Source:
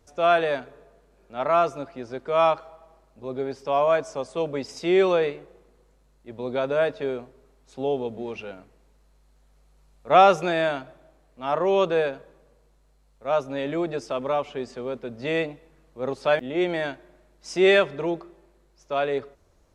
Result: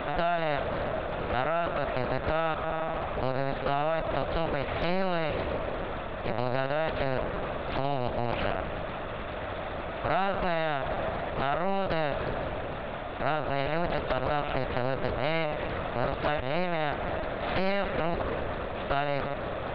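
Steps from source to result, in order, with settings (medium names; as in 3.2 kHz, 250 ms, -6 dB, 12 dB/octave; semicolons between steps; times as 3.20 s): spectral levelling over time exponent 0.4; compression 5:1, threshold -23 dBFS, peak gain reduction 14 dB; mains buzz 400 Hz, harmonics 4, -48 dBFS -2 dB/octave; flutter echo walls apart 9.9 m, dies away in 0.24 s; LPC vocoder at 8 kHz pitch kept; loudspeaker Doppler distortion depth 0.49 ms; trim -2.5 dB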